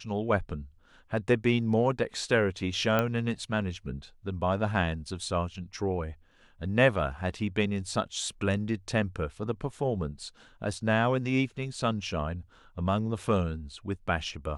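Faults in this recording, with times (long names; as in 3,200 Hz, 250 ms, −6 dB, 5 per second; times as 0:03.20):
0:02.99: click −13 dBFS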